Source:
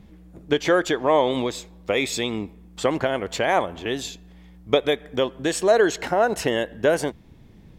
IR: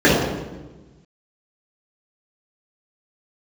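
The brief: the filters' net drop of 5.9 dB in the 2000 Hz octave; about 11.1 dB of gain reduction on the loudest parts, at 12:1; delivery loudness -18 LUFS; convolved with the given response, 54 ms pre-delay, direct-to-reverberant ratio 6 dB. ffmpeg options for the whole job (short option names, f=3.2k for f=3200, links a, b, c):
-filter_complex "[0:a]equalizer=f=2k:t=o:g=-8,acompressor=threshold=-24dB:ratio=12,asplit=2[a][b];[1:a]atrim=start_sample=2205,adelay=54[c];[b][c]afir=irnorm=-1:irlink=0,volume=-34dB[d];[a][d]amix=inputs=2:normalize=0,volume=10dB"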